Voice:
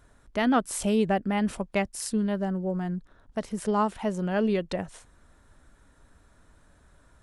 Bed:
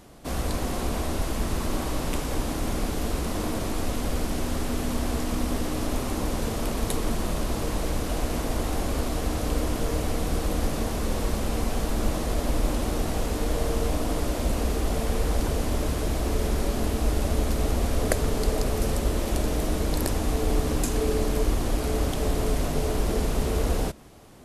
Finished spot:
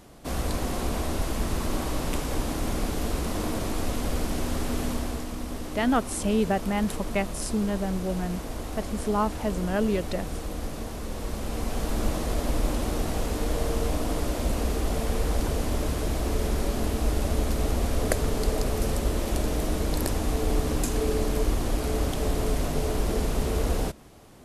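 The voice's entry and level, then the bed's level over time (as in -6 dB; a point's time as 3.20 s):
5.40 s, -0.5 dB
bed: 4.86 s -0.5 dB
5.33 s -7 dB
11.11 s -7 dB
11.94 s -1 dB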